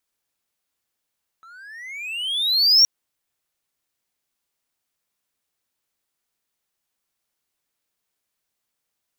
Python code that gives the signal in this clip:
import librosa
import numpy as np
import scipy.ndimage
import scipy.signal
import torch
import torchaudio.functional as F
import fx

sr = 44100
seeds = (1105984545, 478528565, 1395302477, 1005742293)

y = fx.riser_tone(sr, length_s=1.42, level_db=-7.0, wave='triangle', hz=1300.0, rise_st=25.5, swell_db=34.5)